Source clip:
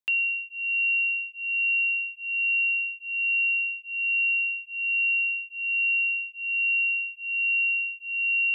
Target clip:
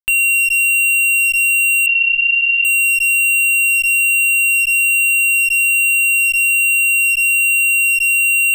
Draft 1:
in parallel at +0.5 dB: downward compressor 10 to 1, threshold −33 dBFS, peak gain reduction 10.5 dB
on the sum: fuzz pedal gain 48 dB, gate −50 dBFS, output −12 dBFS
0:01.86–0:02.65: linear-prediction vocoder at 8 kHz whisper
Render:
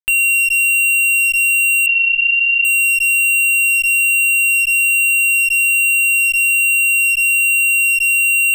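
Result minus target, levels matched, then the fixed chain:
downward compressor: peak gain reduction +8.5 dB
in parallel at +0.5 dB: downward compressor 10 to 1, threshold −23.5 dBFS, peak gain reduction 2.5 dB
on the sum: fuzz pedal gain 48 dB, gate −50 dBFS, output −12 dBFS
0:01.86–0:02.65: linear-prediction vocoder at 8 kHz whisper

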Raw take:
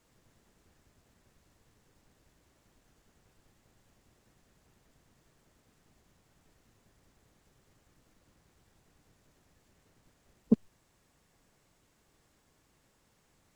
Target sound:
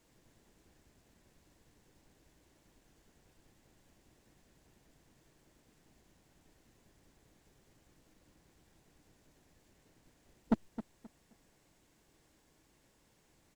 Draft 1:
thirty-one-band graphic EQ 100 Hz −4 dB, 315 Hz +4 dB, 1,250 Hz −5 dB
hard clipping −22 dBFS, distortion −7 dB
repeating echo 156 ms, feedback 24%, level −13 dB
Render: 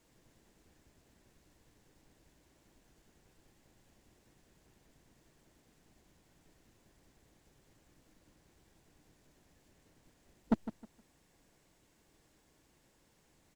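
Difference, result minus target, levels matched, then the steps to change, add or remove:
echo 108 ms early
change: repeating echo 264 ms, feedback 24%, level −13 dB

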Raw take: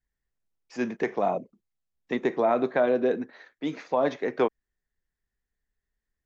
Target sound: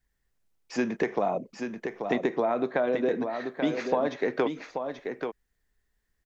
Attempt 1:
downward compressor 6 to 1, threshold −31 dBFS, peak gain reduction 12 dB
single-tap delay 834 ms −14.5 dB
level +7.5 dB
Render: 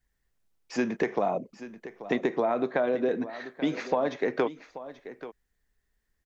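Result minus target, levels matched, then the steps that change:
echo-to-direct −8 dB
change: single-tap delay 834 ms −6.5 dB

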